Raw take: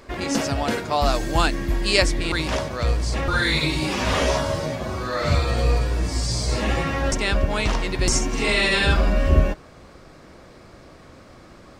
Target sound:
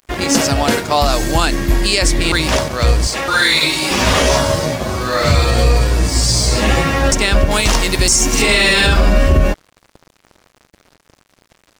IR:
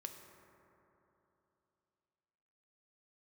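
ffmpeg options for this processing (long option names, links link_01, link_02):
-filter_complex "[0:a]highshelf=frequency=5400:gain=8,aeval=exprs='sgn(val(0))*max(abs(val(0))-0.01,0)':channel_layout=same,asettb=1/sr,asplit=3[link_01][link_02][link_03];[link_01]atrim=end=3.074[link_04];[link_02]atrim=start=3.07:end=3.91,asetpts=PTS-STARTPTS,afade=type=in:duration=0.004:curve=qsin,afade=type=out:start_time=0.836:duration=0.004:curve=qsin,highpass=frequency=540:poles=1[link_05];[link_03]atrim=start=3.906[link_06];[link_04][link_05]acrossfade=duration=0.004:curve1=hsin:curve2=qsin[link_07];[link_07][link_06]acrossfade=duration=0.004:curve1=qsin:curve2=hsin,asettb=1/sr,asplit=3[link_08][link_09][link_10];[link_08]atrim=end=7.514[link_11];[link_09]atrim=start=7.51:end=8.42,asetpts=PTS-STARTPTS,afade=type=in:duration=0.004:curve=qsin,afade=type=out:start_time=0.906:duration=0.004:curve=qsin,aemphasis=mode=production:type=cd[link_12];[link_10]atrim=start=8.416[link_13];[link_11][link_12]acrossfade=duration=0.004:curve1=hsin:curve2=qsin[link_14];[link_14][link_13]acrossfade=duration=0.004:curve1=qsin:curve2=hsin,alimiter=level_in=11dB:limit=-1dB:release=50:level=0:latency=1,volume=-1.5dB"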